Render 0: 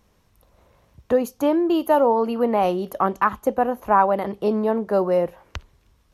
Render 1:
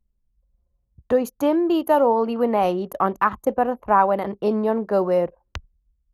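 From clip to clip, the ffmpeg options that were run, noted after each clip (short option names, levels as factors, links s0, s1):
-af "anlmdn=0.631"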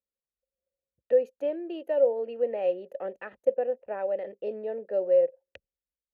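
-filter_complex "[0:a]asplit=3[s0][s1][s2];[s0]bandpass=f=530:t=q:w=8,volume=1[s3];[s1]bandpass=f=1840:t=q:w=8,volume=0.501[s4];[s2]bandpass=f=2480:t=q:w=8,volume=0.355[s5];[s3][s4][s5]amix=inputs=3:normalize=0,equalizer=f=1700:t=o:w=0.35:g=-4.5"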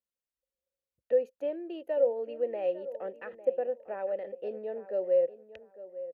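-filter_complex "[0:a]asplit=2[s0][s1];[s1]adelay=852,lowpass=f=1900:p=1,volume=0.188,asplit=2[s2][s3];[s3]adelay=852,lowpass=f=1900:p=1,volume=0.25,asplit=2[s4][s5];[s5]adelay=852,lowpass=f=1900:p=1,volume=0.25[s6];[s0][s2][s4][s6]amix=inputs=4:normalize=0,volume=0.668"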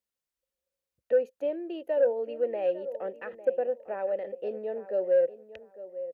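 -af "asoftclip=type=tanh:threshold=0.15,volume=1.41"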